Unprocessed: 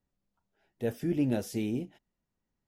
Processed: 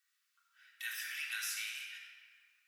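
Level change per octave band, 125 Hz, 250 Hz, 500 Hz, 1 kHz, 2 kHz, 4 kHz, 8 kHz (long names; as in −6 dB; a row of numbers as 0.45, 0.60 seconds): below −40 dB, below −40 dB, below −40 dB, −7.0 dB, +9.5 dB, +8.5 dB, +6.5 dB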